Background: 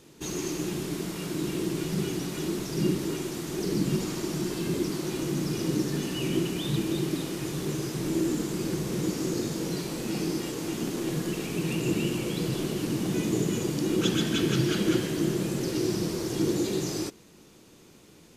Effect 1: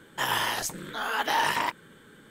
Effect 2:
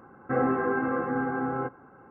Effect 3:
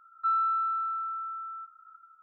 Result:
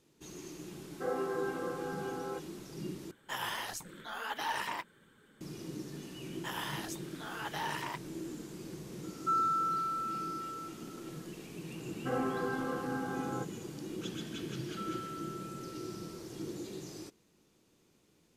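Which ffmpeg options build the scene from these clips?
-filter_complex "[2:a]asplit=2[a][b];[1:a]asplit=2[c][d];[3:a]asplit=2[e][f];[0:a]volume=-15dB[g];[a]lowshelf=f=260:t=q:w=3:g=-11.5[h];[c]flanger=delay=0.7:depth=5.1:regen=-40:speed=1.5:shape=sinusoidal[i];[g]asplit=2[j][k];[j]atrim=end=3.114[l];[i]atrim=end=2.3,asetpts=PTS-STARTPTS,volume=-6.5dB[m];[k]atrim=start=5.406[n];[h]atrim=end=2.1,asetpts=PTS-STARTPTS,volume=-12dB,afade=t=in:d=0.004:c=hsin,afade=t=out:st=2.096:d=0.004:c=hsin,adelay=710[o];[d]atrim=end=2.3,asetpts=PTS-STARTPTS,volume=-12.5dB,afade=t=in:d=0.004:c=hsin,afade=t=out:st=2.296:d=0.004:c=hsin,adelay=276066S[p];[e]atrim=end=2.22,asetpts=PTS-STARTPTS,volume=-3.5dB,afade=t=in:d=0.004:c=hsin,afade=t=out:st=2.216:d=0.004:c=hsin,adelay=9030[q];[b]atrim=end=2.1,asetpts=PTS-STARTPTS,volume=-8.5dB,afade=t=in:d=0.004:c=hsin,afade=t=out:st=2.096:d=0.004:c=hsin,adelay=11760[r];[f]atrim=end=2.22,asetpts=PTS-STARTPTS,volume=-17dB,afade=t=in:d=0.004:c=hsin,afade=t=out:st=2.216:d=0.004:c=hsin,adelay=14530[s];[l][m]acrossfade=d=0.004:c1=hsin:c2=hsin[t];[t][n]acrossfade=d=0.004:c1=hsin:c2=hsin[u];[u][o][p][q][r][s]amix=inputs=6:normalize=0"

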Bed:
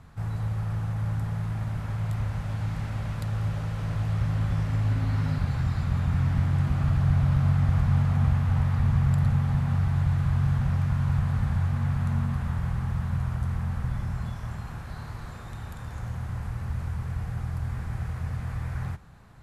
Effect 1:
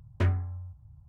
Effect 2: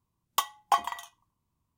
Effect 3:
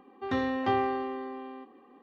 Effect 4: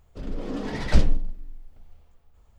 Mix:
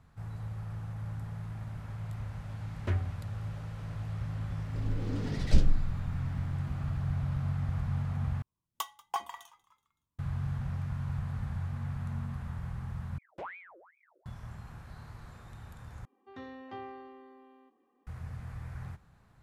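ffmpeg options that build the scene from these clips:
-filter_complex "[1:a]asplit=2[a][b];[0:a]volume=-10dB[c];[a]dynaudnorm=f=110:g=3:m=6dB[d];[4:a]equalizer=f=1.1k:t=o:w=1.6:g=-13.5[e];[2:a]asplit=4[f][g][h][i];[g]adelay=188,afreqshift=63,volume=-23dB[j];[h]adelay=376,afreqshift=126,volume=-29.2dB[k];[i]adelay=564,afreqshift=189,volume=-35.4dB[l];[f][j][k][l]amix=inputs=4:normalize=0[m];[b]aeval=exprs='val(0)*sin(2*PI*1400*n/s+1400*0.7/2.5*sin(2*PI*2.5*n/s))':c=same[n];[c]asplit=4[o][p][q][r];[o]atrim=end=8.424[s];[m]atrim=end=1.77,asetpts=PTS-STARTPTS,volume=-9.5dB[t];[p]atrim=start=10.186:end=13.184[u];[n]atrim=end=1.08,asetpts=PTS-STARTPTS,volume=-14.5dB[v];[q]atrim=start=14.256:end=16.054[w];[3:a]atrim=end=2.02,asetpts=PTS-STARTPTS,volume=-16.5dB[x];[r]atrim=start=18.066[y];[d]atrim=end=1.08,asetpts=PTS-STARTPTS,volume=-11dB,afade=t=in:d=0.004:c=hsin,afade=t=out:st=1.076:d=0.004:c=hsin,adelay=2670[z];[e]atrim=end=2.58,asetpts=PTS-STARTPTS,volume=-4.5dB,afade=t=in:d=0.004:c=hsin,afade=t=out:st=2.576:d=0.004:c=hsin,adelay=4590[aa];[s][t]acrossfade=d=0.004:c1=hsin:c2=hsin[ab];[ab][u]acrossfade=d=0.004:c1=hsin:c2=hsin[ac];[ac][v]acrossfade=d=0.004:c1=hsin:c2=hsin[ad];[ad][w]acrossfade=d=0.004:c1=hsin:c2=hsin[ae];[ae][x]acrossfade=d=0.004:c1=hsin:c2=hsin[af];[af][y]acrossfade=d=0.004:c1=hsin:c2=hsin[ag];[ag][z][aa]amix=inputs=3:normalize=0"

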